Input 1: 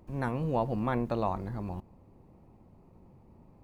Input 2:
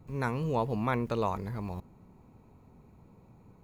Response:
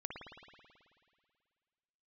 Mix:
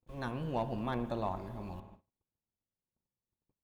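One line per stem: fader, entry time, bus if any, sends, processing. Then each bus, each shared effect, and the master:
-5.5 dB, 0.00 s, send -6.5 dB, peaking EQ 3.2 kHz -3.5 dB 0.66 oct
-4.0 dB, 0.00 s, polarity flipped, send -14 dB, compression, threshold -31 dBFS, peak gain reduction 7.5 dB; small resonant body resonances 530/1100/3500 Hz, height 13 dB, ringing for 95 ms; auto duck -9 dB, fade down 0.45 s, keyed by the first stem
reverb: on, RT60 2.1 s, pre-delay 54 ms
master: gate -52 dBFS, range -39 dB; peaking EQ 3.2 kHz +11.5 dB 0.5 oct; hard clipper -25 dBFS, distortion -29 dB

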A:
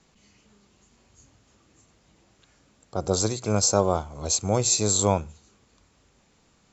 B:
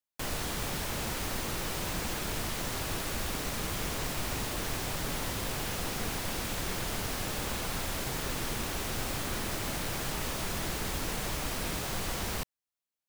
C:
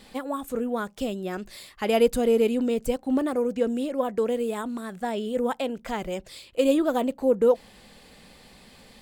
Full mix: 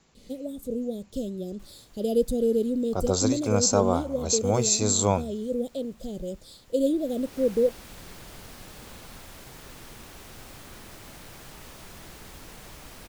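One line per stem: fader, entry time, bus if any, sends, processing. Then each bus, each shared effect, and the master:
-1.0 dB, 0.00 s, no send, none
-11.0 dB, 1.40 s, no send, auto duck -16 dB, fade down 1.95 s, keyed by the first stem
-4.0 dB, 0.15 s, no send, elliptic band-stop 580–3600 Hz; bass shelf 220 Hz +7.5 dB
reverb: none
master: none

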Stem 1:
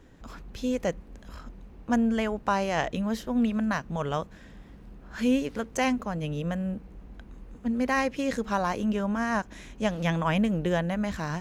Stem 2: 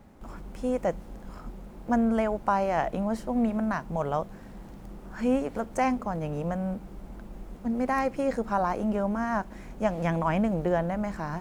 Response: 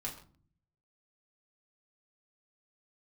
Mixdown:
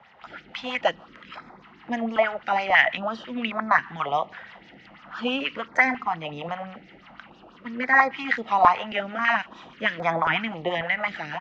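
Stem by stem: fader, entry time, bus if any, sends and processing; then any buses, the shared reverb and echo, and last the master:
0.0 dB, 0.00 s, send -20.5 dB, level rider gain up to 11.5 dB; step-sequenced high-pass 4 Hz 720–2400 Hz; auto duck -10 dB, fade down 1.80 s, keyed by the second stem
+1.5 dB, 0.8 ms, no send, sweeping bell 5.9 Hz 580–6300 Hz +15 dB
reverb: on, pre-delay 4 ms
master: harmonic tremolo 6.3 Hz, depth 50%, crossover 620 Hz; cabinet simulation 190–4400 Hz, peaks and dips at 200 Hz -5 dB, 410 Hz -4 dB, 580 Hz -6 dB, 1.3 kHz +5 dB, 2 kHz +8 dB, 2.9 kHz +9 dB; step-sequenced notch 3.7 Hz 290–2900 Hz

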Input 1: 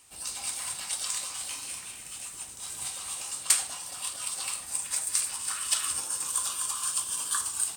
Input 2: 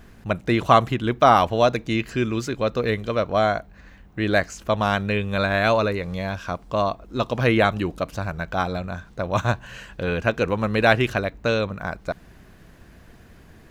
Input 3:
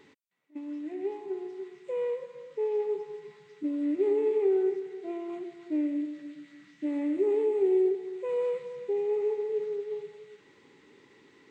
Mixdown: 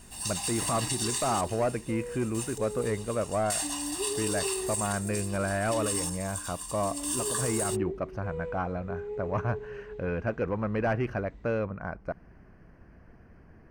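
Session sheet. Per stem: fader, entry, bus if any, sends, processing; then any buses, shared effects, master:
+0.5 dB, 0.00 s, no send, comb 1.1 ms, depth 89%; trance gate "xxxxxx....x...." 64 bpm -12 dB
-5.0 dB, 0.00 s, no send, saturation -15.5 dBFS, distortion -11 dB; boxcar filter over 12 samples
-8.5 dB, 0.00 s, no send, none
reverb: none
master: peak limiter -19.5 dBFS, peak gain reduction 10.5 dB

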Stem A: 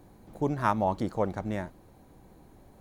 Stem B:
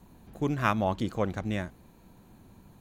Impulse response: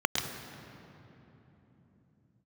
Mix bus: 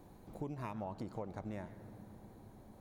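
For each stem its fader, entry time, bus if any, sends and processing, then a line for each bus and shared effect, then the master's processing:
-4.0 dB, 0.00 s, send -23 dB, compression, threshold -29 dBFS, peak gain reduction 10 dB
-10.0 dB, 0.00 s, no send, auto duck -15 dB, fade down 1.80 s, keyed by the first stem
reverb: on, RT60 3.5 s, pre-delay 104 ms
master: compression 2:1, threshold -44 dBFS, peak gain reduction 8 dB

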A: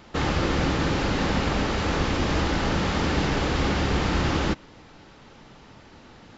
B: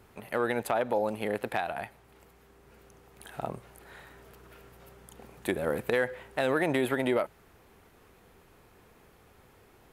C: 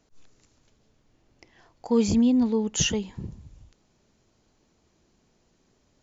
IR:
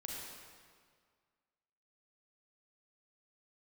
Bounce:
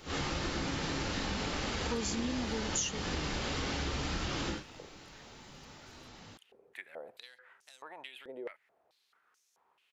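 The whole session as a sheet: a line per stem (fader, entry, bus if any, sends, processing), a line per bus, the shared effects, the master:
-5.5 dB, 0.00 s, no send, phase randomisation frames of 200 ms
-4.0 dB, 1.30 s, no send, compression 2.5:1, threshold -31 dBFS, peak gain reduction 6.5 dB; step-sequenced band-pass 4.6 Hz 460–6000 Hz
-0.5 dB, 0.00 s, no send, bass shelf 390 Hz -7.5 dB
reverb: none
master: treble shelf 3.3 kHz +11 dB; compression 6:1, threshold -32 dBFS, peak gain reduction 17 dB

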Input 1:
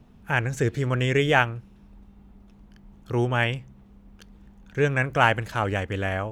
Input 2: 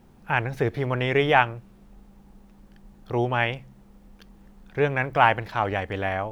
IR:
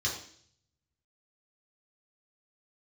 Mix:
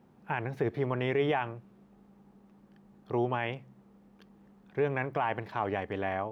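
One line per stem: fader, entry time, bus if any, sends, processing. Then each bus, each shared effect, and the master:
-7.5 dB, 0.00 s, no send, two resonant band-passes 720 Hz, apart 1.4 oct
-4.0 dB, 0.00 s, no send, high-pass 130 Hz 12 dB/octave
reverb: none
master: treble shelf 2.8 kHz -10 dB; peak limiter -18 dBFS, peak gain reduction 9.5 dB

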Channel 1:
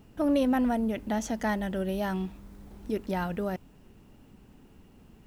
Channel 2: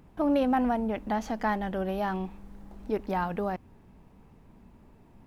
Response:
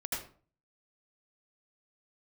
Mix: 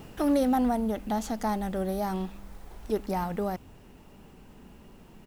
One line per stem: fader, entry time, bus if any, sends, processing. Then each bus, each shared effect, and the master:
+1.0 dB, 0.00 s, no send, spectrum-flattening compressor 2:1; auto duck -8 dB, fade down 0.70 s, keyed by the second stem
+3.0 dB, 0.4 ms, polarity flipped, no send, touch-sensitive flanger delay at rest 6.6 ms, full sweep at -29.5 dBFS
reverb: none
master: none

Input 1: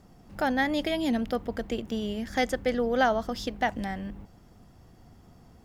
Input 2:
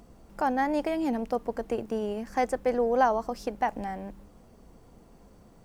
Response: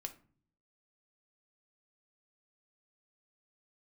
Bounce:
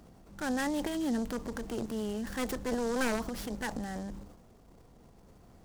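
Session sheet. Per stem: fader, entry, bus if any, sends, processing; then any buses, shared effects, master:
-3.0 dB, 0.00 s, no send, auto duck -8 dB, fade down 0.40 s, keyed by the second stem
-5.5 dB, 0.00 s, no send, one-sided wavefolder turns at -24.5 dBFS; transient shaper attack -5 dB, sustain +10 dB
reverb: none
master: delay time shaken by noise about 5.6 kHz, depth 0.036 ms

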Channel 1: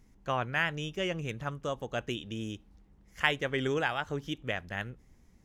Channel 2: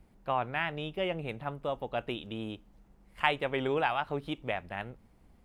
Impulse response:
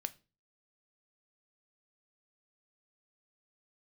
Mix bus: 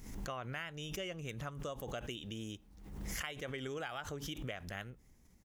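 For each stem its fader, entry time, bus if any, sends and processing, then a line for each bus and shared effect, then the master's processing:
-5.5 dB, 0.00 s, no send, treble shelf 6.6 kHz +10 dB; swell ahead of each attack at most 58 dB/s
-13.0 dB, 1.3 ms, polarity flipped, no send, reverb removal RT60 1.9 s; tilt EQ +4 dB/octave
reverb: none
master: compression 6:1, threshold -38 dBFS, peak gain reduction 13 dB

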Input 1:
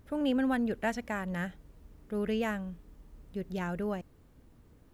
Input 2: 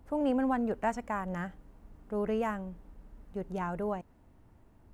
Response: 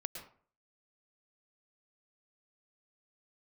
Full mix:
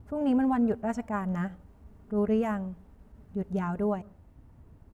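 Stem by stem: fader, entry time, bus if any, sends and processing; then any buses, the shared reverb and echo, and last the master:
-4.5 dB, 0.00 s, send -11.5 dB, reverb removal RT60 0.78 s; steep low-pass 1.4 kHz 48 dB/octave; peaking EQ 84 Hz +13.5 dB 2.6 oct
0.0 dB, 5.8 ms, no send, attacks held to a fixed rise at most 290 dB/s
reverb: on, RT60 0.45 s, pre-delay 102 ms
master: none

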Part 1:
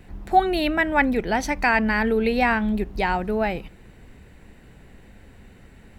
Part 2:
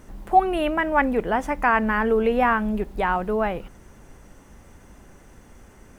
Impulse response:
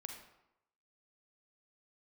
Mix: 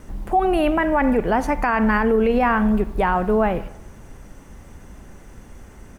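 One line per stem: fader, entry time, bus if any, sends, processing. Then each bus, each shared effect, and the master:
-11.0 dB, 0.00 s, no send, none
+0.5 dB, 0.7 ms, send -4 dB, none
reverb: on, RT60 0.85 s, pre-delay 37 ms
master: bass shelf 180 Hz +4.5 dB; peak limiter -10 dBFS, peak gain reduction 9 dB

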